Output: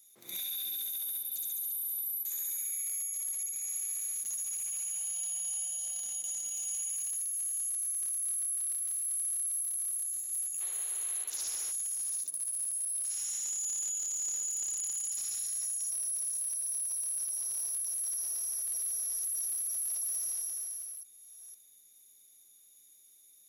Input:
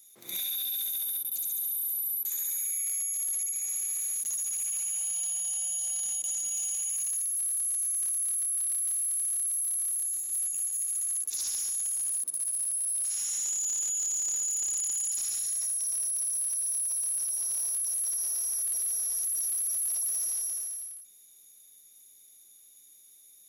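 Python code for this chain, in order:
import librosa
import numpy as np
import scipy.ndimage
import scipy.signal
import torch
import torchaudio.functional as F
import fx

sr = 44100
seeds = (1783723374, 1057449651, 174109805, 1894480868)

y = fx.reverse_delay(x, sr, ms=513, wet_db=-11.5)
y = fx.spec_paint(y, sr, seeds[0], shape='noise', start_s=10.6, length_s=1.12, low_hz=320.0, high_hz=4400.0, level_db=-51.0)
y = F.gain(torch.from_numpy(y), -4.5).numpy()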